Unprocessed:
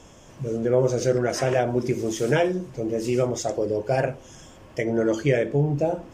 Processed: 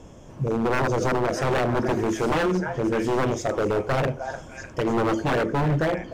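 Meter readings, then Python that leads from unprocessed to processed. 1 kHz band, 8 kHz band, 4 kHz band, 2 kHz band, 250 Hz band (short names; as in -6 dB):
+5.5 dB, -4.0 dB, +1.0 dB, +3.5 dB, +1.0 dB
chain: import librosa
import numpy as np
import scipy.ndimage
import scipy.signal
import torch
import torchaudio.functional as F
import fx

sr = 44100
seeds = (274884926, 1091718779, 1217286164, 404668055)

y = fx.tilt_shelf(x, sr, db=5.5, hz=970.0)
y = fx.echo_stepped(y, sr, ms=301, hz=1200.0, octaves=0.7, feedback_pct=70, wet_db=-0.5)
y = 10.0 ** (-17.0 / 20.0) * (np.abs((y / 10.0 ** (-17.0 / 20.0) + 3.0) % 4.0 - 2.0) - 1.0)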